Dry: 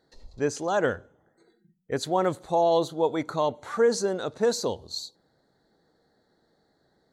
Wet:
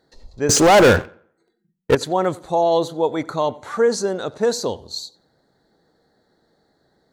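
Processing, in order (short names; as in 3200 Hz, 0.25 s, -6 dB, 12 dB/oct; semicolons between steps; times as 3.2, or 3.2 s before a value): 0.49–1.95 sample leveller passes 5; on a send: tape echo 90 ms, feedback 36%, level -20 dB, low-pass 2900 Hz; on the sum: gain +4.5 dB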